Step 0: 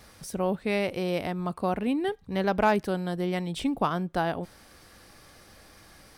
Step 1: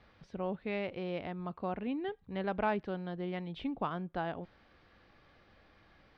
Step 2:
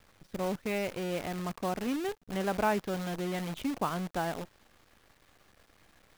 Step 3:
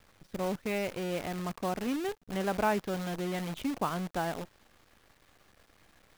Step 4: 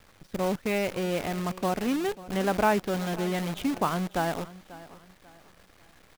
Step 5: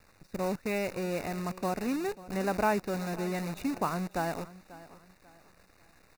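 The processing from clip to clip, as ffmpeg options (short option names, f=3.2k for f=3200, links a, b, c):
-af "lowpass=f=3.6k:w=0.5412,lowpass=f=3.6k:w=1.3066,volume=-9dB"
-af "acrusher=bits=8:dc=4:mix=0:aa=0.000001,volume=3.5dB"
-af anull
-af "aecho=1:1:541|1082|1623:0.126|0.0415|0.0137,volume=5dB"
-af "asuperstop=centerf=3200:order=8:qfactor=4.3,volume=-4dB"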